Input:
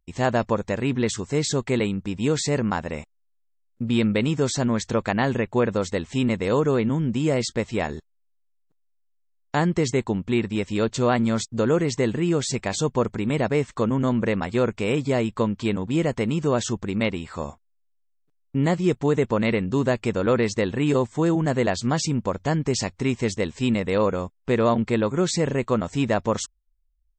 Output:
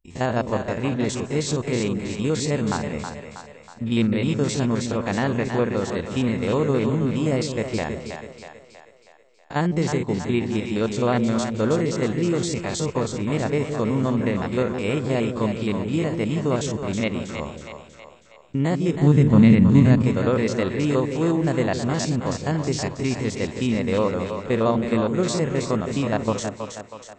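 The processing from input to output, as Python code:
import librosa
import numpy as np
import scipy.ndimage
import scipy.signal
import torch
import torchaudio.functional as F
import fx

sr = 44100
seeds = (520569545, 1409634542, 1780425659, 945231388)

y = fx.spec_steps(x, sr, hold_ms=50)
y = fx.low_shelf_res(y, sr, hz=300.0, db=10.0, q=1.5, at=(18.97, 20.03))
y = fx.echo_split(y, sr, split_hz=500.0, low_ms=163, high_ms=321, feedback_pct=52, wet_db=-6.5)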